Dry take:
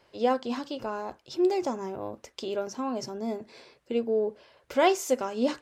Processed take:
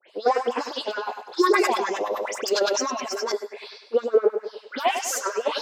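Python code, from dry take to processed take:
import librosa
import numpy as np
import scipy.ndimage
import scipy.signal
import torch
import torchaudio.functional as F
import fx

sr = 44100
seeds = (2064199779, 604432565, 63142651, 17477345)

y = scipy.signal.sosfilt(scipy.signal.butter(4, 130.0, 'highpass', fs=sr, output='sos'), x)
y = fx.peak_eq(y, sr, hz=3900.0, db=7.0, octaves=1.5)
y = 10.0 ** (-22.5 / 20.0) * np.tanh(y / 10.0 ** (-22.5 / 20.0))
y = fx.filter_lfo_highpass(y, sr, shape='sine', hz=9.8, low_hz=380.0, high_hz=1900.0, q=2.1)
y = fx.dispersion(y, sr, late='highs', ms=99.0, hz=2900.0)
y = fx.phaser_stages(y, sr, stages=6, low_hz=190.0, high_hz=4200.0, hz=0.53, feedback_pct=5)
y = fx.echo_bbd(y, sr, ms=99, stages=4096, feedback_pct=48, wet_db=-8.0)
y = fx.sustainer(y, sr, db_per_s=28.0, at=(1.24, 3.32))
y = F.gain(torch.from_numpy(y), 7.0).numpy()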